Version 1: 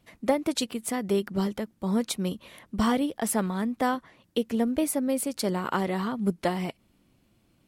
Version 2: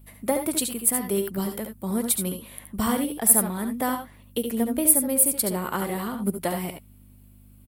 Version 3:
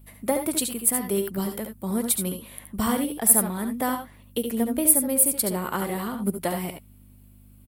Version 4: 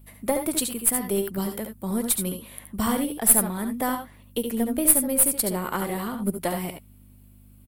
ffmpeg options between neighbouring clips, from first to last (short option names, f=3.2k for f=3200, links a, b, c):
-af "aexciter=amount=9.2:drive=2.9:freq=8.5k,aeval=exprs='val(0)+0.00398*(sin(2*PI*50*n/s)+sin(2*PI*2*50*n/s)/2+sin(2*PI*3*50*n/s)/3+sin(2*PI*4*50*n/s)/4+sin(2*PI*5*50*n/s)/5)':c=same,aecho=1:1:71|84:0.398|0.282,volume=-1dB"
-af anull
-af "aeval=exprs='0.841*(cos(1*acos(clip(val(0)/0.841,-1,1)))-cos(1*PI/2))+0.0422*(cos(6*acos(clip(val(0)/0.841,-1,1)))-cos(6*PI/2))':c=same"